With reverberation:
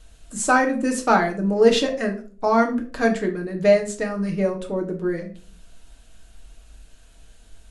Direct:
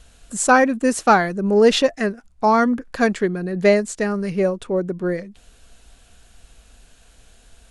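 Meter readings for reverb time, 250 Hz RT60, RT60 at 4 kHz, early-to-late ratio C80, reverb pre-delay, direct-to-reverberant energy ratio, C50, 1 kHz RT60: 0.40 s, 0.60 s, 0.30 s, 16.0 dB, 3 ms, 2.0 dB, 11.0 dB, 0.35 s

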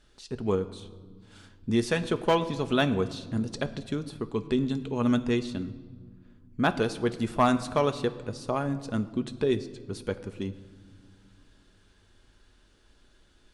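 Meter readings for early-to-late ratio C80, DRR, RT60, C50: 16.0 dB, 8.5 dB, 1.7 s, 14.5 dB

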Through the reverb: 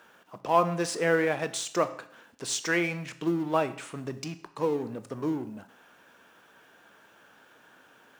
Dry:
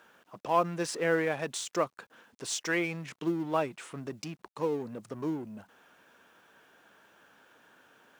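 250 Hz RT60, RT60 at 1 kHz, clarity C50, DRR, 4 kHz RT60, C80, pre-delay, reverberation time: 0.60 s, 0.60 s, 14.5 dB, 11.0 dB, 0.60 s, 17.0 dB, 16 ms, 0.60 s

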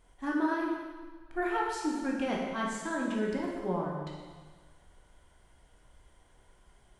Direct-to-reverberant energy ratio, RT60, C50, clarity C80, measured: -2.5 dB, 1.5 s, 1.0 dB, 3.0 dB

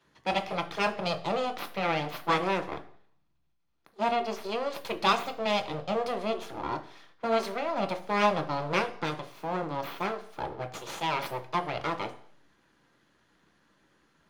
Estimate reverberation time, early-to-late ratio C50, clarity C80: 0.55 s, 14.0 dB, 17.5 dB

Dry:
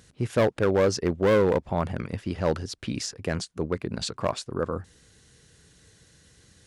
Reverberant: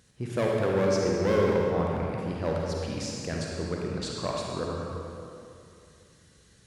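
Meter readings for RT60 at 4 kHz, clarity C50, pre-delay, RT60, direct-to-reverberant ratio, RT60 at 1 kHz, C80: 1.9 s, -1.5 dB, 38 ms, 2.6 s, -2.5 dB, 2.6 s, 0.0 dB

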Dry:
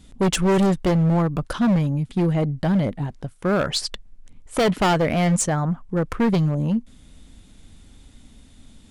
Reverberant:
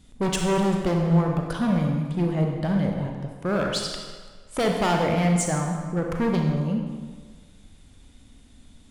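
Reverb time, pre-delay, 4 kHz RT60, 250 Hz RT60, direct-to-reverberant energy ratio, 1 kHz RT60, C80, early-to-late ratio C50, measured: 1.6 s, 31 ms, 1.2 s, 1.5 s, 1.5 dB, 1.6 s, 4.5 dB, 3.0 dB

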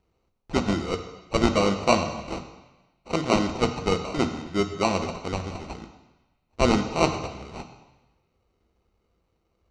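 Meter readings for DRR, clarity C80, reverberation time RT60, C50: 6.5 dB, 10.5 dB, 1.1 s, 9.0 dB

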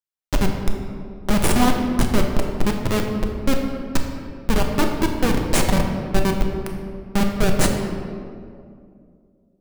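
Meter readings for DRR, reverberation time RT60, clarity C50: 1.5 dB, 2.4 s, 4.0 dB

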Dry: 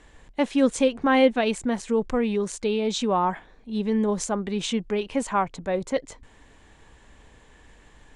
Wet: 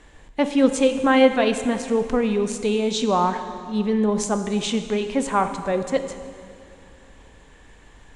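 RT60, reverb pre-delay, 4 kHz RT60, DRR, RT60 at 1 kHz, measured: 2.3 s, 12 ms, 2.1 s, 8.0 dB, 2.1 s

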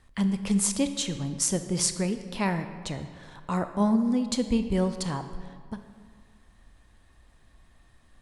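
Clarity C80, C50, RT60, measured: 11.5 dB, 10.0 dB, 1.9 s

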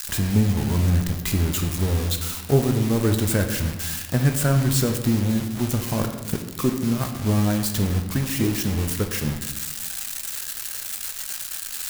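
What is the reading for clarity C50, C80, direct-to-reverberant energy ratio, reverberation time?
7.5 dB, 9.0 dB, 4.5 dB, 1.3 s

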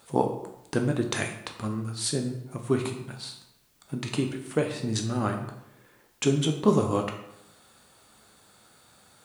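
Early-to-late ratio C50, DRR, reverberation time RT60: 7.5 dB, 3.5 dB, 0.80 s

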